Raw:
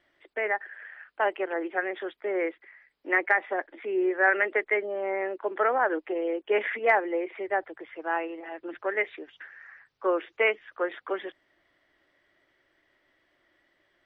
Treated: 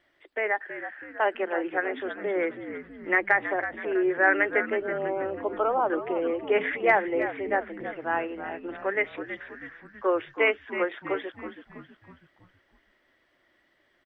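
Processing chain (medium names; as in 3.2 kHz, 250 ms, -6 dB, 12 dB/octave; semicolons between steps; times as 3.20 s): 4.70–5.90 s: Chebyshev band-stop 1.2–2.8 kHz, order 2; on a send: frequency-shifting echo 324 ms, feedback 48%, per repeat -69 Hz, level -10.5 dB; on the sum: trim +1 dB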